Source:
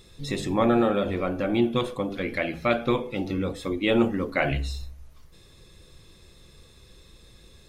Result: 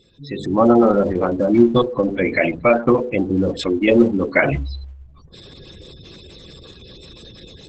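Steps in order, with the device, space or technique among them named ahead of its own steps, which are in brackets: noise-suppressed video call (high-pass 110 Hz 6 dB/octave; spectral gate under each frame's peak -15 dB strong; level rider gain up to 15 dB; Opus 12 kbps 48 kHz)

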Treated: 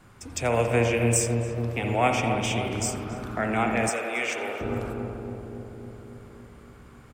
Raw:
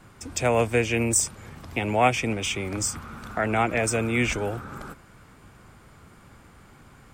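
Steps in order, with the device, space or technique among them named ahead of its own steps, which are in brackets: dub delay into a spring reverb (filtered feedback delay 278 ms, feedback 75%, low-pass 1 kHz, level -5 dB; spring tank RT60 1.6 s, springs 59 ms, chirp 35 ms, DRR 4 dB); 3.89–4.61 s: high-pass 510 Hz 12 dB/octave; delay 87 ms -22.5 dB; trim -3 dB

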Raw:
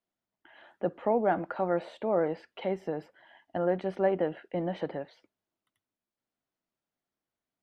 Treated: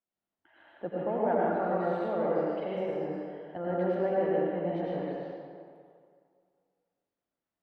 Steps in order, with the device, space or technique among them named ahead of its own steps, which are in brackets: swimming-pool hall (reverberation RT60 2.2 s, pre-delay 82 ms, DRR -6.5 dB; treble shelf 4 kHz -7 dB); trim -7 dB

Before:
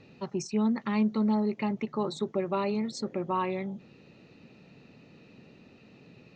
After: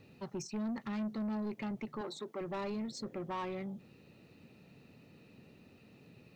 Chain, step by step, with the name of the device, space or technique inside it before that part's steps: open-reel tape (saturation -28.5 dBFS, distortion -10 dB; peaking EQ 82 Hz +5 dB 1.12 oct; white noise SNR 41 dB); 2.01–2.41 s: high-pass 290 Hz 12 dB/octave; trim -5.5 dB

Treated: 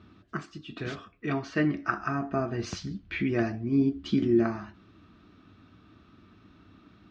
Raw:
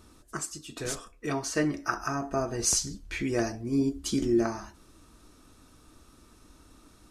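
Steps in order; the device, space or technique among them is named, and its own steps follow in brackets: guitar cabinet (cabinet simulation 92–3500 Hz, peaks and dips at 98 Hz +8 dB, 190 Hz +7 dB, 510 Hz -9 dB, 910 Hz -7 dB); trim +2 dB

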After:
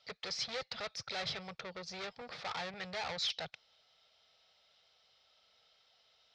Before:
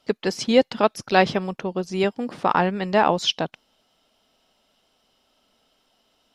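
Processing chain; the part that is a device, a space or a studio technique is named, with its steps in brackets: 2.21–2.74 s: high-pass 140 Hz; scooped metal amplifier (valve stage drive 31 dB, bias 0.25; cabinet simulation 100–4500 Hz, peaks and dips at 210 Hz -6 dB, 480 Hz +5 dB, 1 kHz -8 dB, 1.6 kHz -5 dB, 2.9 kHz -10 dB; amplifier tone stack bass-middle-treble 10-0-10); trim +7 dB

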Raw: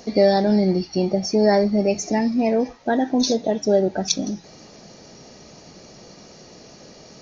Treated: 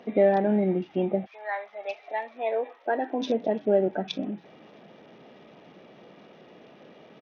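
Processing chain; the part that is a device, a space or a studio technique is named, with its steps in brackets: 1.25–3.21 s: high-pass 1.1 kHz -> 290 Hz 24 dB/octave; Bluetooth headset (high-pass 190 Hz 12 dB/octave; resampled via 8 kHz; trim -4 dB; SBC 64 kbps 48 kHz)

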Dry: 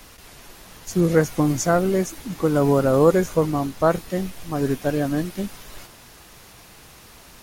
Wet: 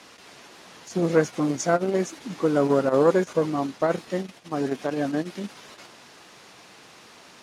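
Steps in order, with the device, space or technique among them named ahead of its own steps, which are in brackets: public-address speaker with an overloaded transformer (transformer saturation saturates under 380 Hz; band-pass 210–6400 Hz)

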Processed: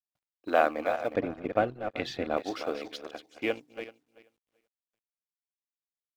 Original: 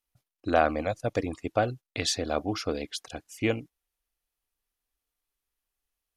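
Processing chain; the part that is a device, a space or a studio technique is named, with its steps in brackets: backward echo that repeats 192 ms, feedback 44%, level -8.5 dB; phone line with mismatched companding (band-pass 340–3600 Hz; companding laws mixed up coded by A); 1.14–2.37 s: tone controls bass +13 dB, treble -10 dB

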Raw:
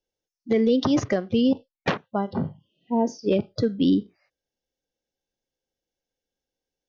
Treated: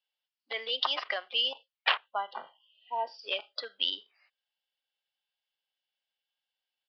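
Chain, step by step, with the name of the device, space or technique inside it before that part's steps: 2.04–2.47 s: tone controls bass +9 dB, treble -8 dB; musical greeting card (resampled via 11.025 kHz; high-pass 820 Hz 24 dB/octave; peaking EQ 3 kHz +10 dB 0.45 oct)

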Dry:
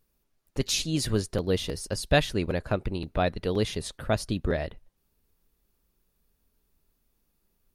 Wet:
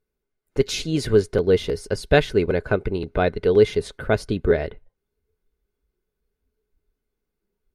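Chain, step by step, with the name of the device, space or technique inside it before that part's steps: spectral noise reduction 11 dB; inside a helmet (treble shelf 5.1 kHz -9.5 dB; small resonant body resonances 420/1500/2100 Hz, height 12 dB, ringing for 45 ms); trim +3.5 dB

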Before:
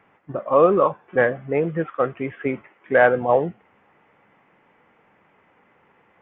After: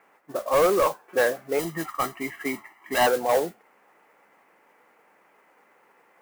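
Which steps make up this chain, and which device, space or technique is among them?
carbon microphone (band-pass 350–3000 Hz; saturation -14.5 dBFS, distortion -11 dB; modulation noise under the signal 16 dB); 1.59–3.07 s: comb 1 ms, depth 89%

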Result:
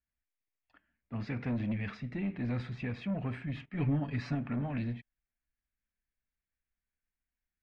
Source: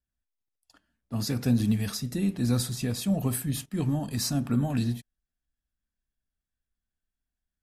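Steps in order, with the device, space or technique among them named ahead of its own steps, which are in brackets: overdriven synthesiser ladder filter (saturation -22.5 dBFS, distortion -14 dB; four-pole ladder low-pass 2.5 kHz, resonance 60%); 3.72–4.35 s: comb 7.1 ms, depth 92%; trim +5 dB

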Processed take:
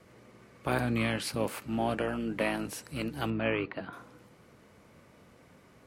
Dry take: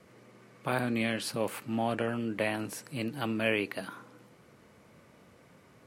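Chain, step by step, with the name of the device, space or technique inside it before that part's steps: 3.30–3.93 s: distance through air 300 m; octave pedal (harmony voices -12 st -9 dB)

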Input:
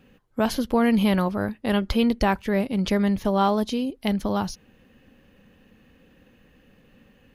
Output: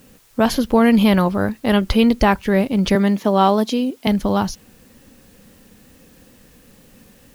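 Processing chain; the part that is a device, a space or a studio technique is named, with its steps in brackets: 2.95–4.07 s: high-pass 180 Hz 24 dB/octave; plain cassette with noise reduction switched in (tape noise reduction on one side only decoder only; wow and flutter; white noise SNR 36 dB); trim +6.5 dB

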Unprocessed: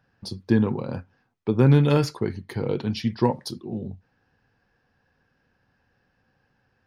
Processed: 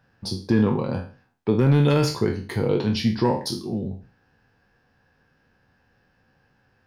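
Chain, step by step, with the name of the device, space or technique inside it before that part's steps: spectral sustain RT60 0.39 s; soft clipper into limiter (saturation -7.5 dBFS, distortion -21 dB; peak limiter -13.5 dBFS, peak gain reduction 4.5 dB); trim +3 dB

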